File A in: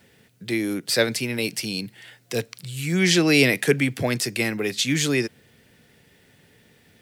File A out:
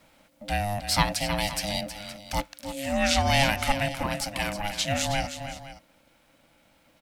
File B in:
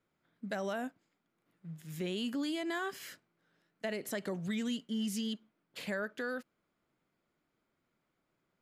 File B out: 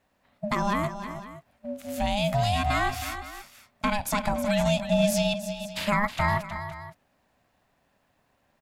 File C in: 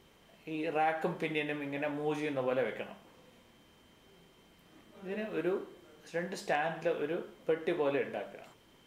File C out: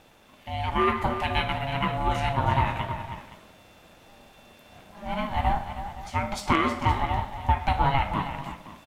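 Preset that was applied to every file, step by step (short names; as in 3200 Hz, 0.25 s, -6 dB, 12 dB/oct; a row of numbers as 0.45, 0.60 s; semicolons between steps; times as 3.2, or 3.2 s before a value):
vocal rider 2 s; tapped delay 0.318/0.518 s -10.5/-16 dB; ring modulator 410 Hz; match loudness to -27 LUFS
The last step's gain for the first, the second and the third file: -2.0, +14.0, +11.5 dB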